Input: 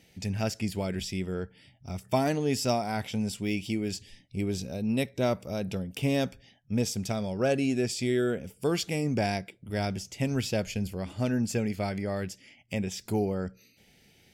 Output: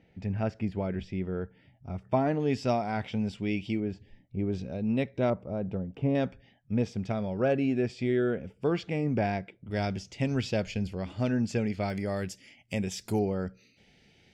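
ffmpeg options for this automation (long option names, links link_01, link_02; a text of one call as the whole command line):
ffmpeg -i in.wav -af "asetnsamples=nb_out_samples=441:pad=0,asendcmd='2.4 lowpass f 3000;3.8 lowpass f 1300;4.53 lowpass f 2400;5.3 lowpass f 1100;6.15 lowpass f 2300;9.71 lowpass f 4600;11.9 lowpass f 12000;13.19 lowpass f 4800',lowpass=1700" out.wav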